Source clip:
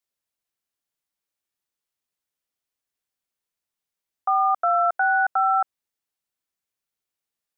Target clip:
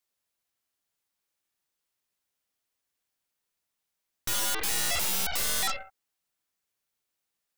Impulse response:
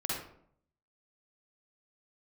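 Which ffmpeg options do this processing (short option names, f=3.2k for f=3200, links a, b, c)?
-filter_complex "[0:a]asplit=2[a][b];[1:a]atrim=start_sample=2205,afade=t=out:st=0.32:d=0.01,atrim=end_sample=14553,lowshelf=f=460:g=-8[c];[b][c]afir=irnorm=-1:irlink=0,volume=-13.5dB[d];[a][d]amix=inputs=2:normalize=0,aeval=exprs='(mod(18.8*val(0)+1,2)-1)/18.8':c=same,aeval=exprs='0.0562*(cos(1*acos(clip(val(0)/0.0562,-1,1)))-cos(1*PI/2))+0.0178*(cos(7*acos(clip(val(0)/0.0562,-1,1)))-cos(7*PI/2))+0.0224*(cos(8*acos(clip(val(0)/0.0562,-1,1)))-cos(8*PI/2))':c=same"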